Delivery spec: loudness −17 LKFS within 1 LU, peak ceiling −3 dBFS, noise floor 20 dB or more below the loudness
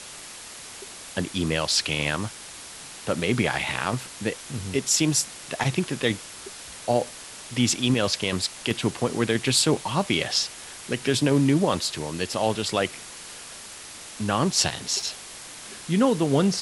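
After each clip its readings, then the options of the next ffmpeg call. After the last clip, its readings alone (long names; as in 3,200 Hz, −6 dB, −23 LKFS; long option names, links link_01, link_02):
background noise floor −41 dBFS; target noise floor −45 dBFS; integrated loudness −24.5 LKFS; sample peak −8.5 dBFS; target loudness −17.0 LKFS
→ -af "afftdn=noise_reduction=6:noise_floor=-41"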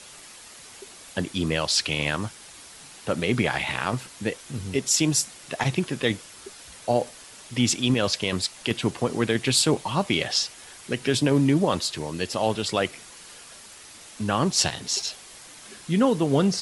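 background noise floor −46 dBFS; integrated loudness −24.5 LKFS; sample peak −8.5 dBFS; target loudness −17.0 LKFS
→ -af "volume=7.5dB,alimiter=limit=-3dB:level=0:latency=1"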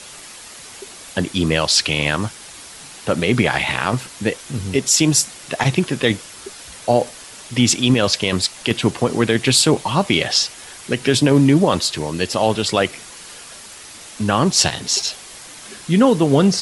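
integrated loudness −17.5 LKFS; sample peak −3.0 dBFS; background noise floor −39 dBFS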